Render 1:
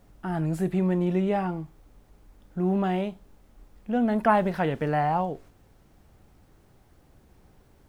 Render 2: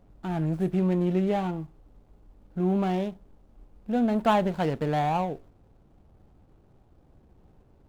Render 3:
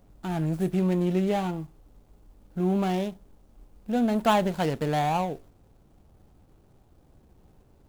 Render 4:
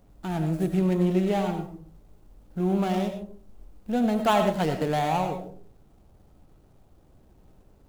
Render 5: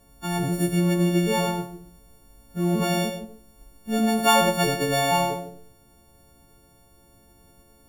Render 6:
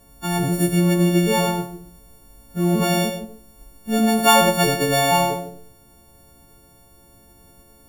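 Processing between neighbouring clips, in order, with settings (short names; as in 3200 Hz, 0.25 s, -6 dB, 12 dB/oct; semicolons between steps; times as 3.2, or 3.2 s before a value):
median filter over 25 samples
high shelf 4500 Hz +11.5 dB
digital reverb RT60 0.48 s, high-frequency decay 0.35×, pre-delay 55 ms, DRR 6.5 dB
frequency quantiser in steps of 4 st; gain +1.5 dB
high shelf 10000 Hz +4 dB; gain +4 dB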